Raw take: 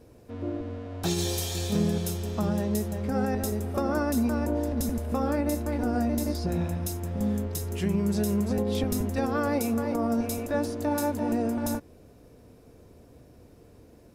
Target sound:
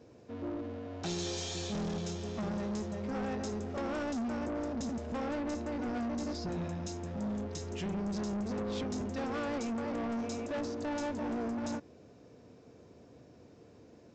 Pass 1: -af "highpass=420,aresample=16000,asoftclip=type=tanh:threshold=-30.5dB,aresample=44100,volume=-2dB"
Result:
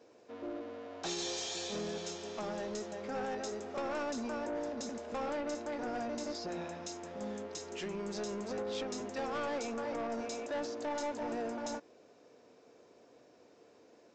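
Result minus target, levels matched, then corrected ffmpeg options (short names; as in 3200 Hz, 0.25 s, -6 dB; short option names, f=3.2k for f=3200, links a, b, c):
125 Hz band -9.5 dB
-af "highpass=120,aresample=16000,asoftclip=type=tanh:threshold=-30.5dB,aresample=44100,volume=-2dB"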